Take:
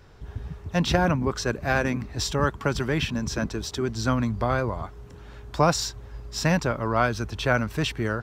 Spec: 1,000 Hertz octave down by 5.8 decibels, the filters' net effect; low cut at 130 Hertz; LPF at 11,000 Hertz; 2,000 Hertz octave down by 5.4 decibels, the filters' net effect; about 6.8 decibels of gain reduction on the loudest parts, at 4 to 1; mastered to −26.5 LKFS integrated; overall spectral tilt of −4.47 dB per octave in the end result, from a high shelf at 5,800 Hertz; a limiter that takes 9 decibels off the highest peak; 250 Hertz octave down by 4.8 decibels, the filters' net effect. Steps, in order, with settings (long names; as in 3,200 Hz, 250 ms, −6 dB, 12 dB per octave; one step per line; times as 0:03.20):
high-pass filter 130 Hz
low-pass filter 11,000 Hz
parametric band 250 Hz −5.5 dB
parametric band 1,000 Hz −6.5 dB
parametric band 2,000 Hz −4 dB
high-shelf EQ 5,800 Hz −5.5 dB
downward compressor 4 to 1, threshold −28 dBFS
level +10.5 dB
brickwall limiter −16 dBFS